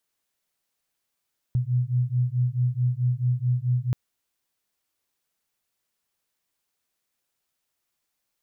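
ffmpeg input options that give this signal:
-f lavfi -i "aevalsrc='0.0631*(sin(2*PI*122*t)+sin(2*PI*126.6*t))':d=2.38:s=44100"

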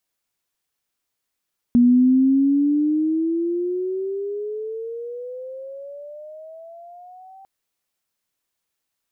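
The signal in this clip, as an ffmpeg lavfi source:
-f lavfi -i "aevalsrc='pow(10,(-10-31.5*t/5.7)/20)*sin(2*PI*239*5.7/(20.5*log(2)/12)*(exp(20.5*log(2)/12*t/5.7)-1))':d=5.7:s=44100"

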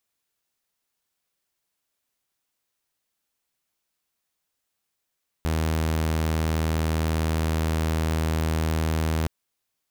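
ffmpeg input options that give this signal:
-f lavfi -i "aevalsrc='0.106*(2*mod(79.7*t,1)-1)':d=3.82:s=44100"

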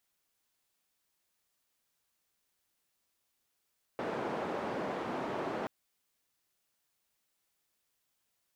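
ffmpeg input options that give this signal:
-f lavfi -i "anoisesrc=c=white:d=1.68:r=44100:seed=1,highpass=f=200,lowpass=f=760,volume=-16.2dB"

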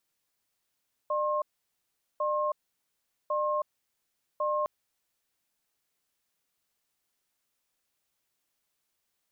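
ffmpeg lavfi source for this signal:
-f lavfi -i "aevalsrc='0.0376*(sin(2*PI*601*t)+sin(2*PI*1070*t))*clip(min(mod(t,1.1),0.32-mod(t,1.1))/0.005,0,1)':d=3.56:s=44100"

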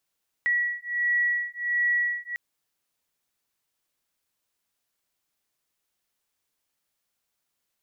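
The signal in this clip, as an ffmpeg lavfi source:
-f lavfi -i "aevalsrc='0.0501*(sin(2*PI*1930*t)+sin(2*PI*1931.4*t))':d=1.9:s=44100"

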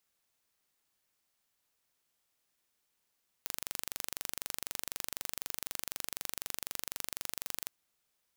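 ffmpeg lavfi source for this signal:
-f lavfi -i "aevalsrc='0.355*eq(mod(n,1838),0)':d=4.23:s=44100"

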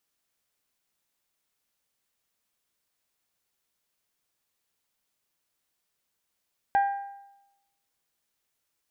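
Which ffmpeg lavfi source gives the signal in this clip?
-f lavfi -i "aevalsrc='0.133*pow(10,-3*t/0.93)*sin(2*PI*798*t)+0.0376*pow(10,-3*t/0.755)*sin(2*PI*1596*t)+0.0106*pow(10,-3*t/0.715)*sin(2*PI*1915.2*t)+0.00299*pow(10,-3*t/0.669)*sin(2*PI*2394*t)+0.000841*pow(10,-3*t/0.614)*sin(2*PI*3192*t)':d=1.55:s=44100"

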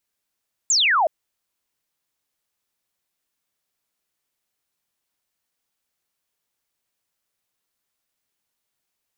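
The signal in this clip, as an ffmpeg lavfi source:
-f lavfi -i "aevalsrc='0.178*clip(t/0.002,0,1)*clip((0.37-t)/0.002,0,1)*sin(2*PI*7700*0.37/log(590/7700)*(exp(log(590/7700)*t/0.37)-1))':d=0.37:s=44100"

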